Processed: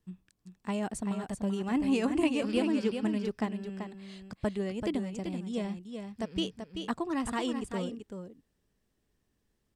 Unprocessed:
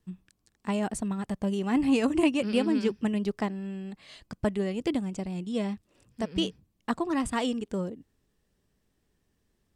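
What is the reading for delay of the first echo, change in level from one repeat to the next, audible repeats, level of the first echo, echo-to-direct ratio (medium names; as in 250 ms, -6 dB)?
385 ms, no regular repeats, 1, -7.0 dB, -7.0 dB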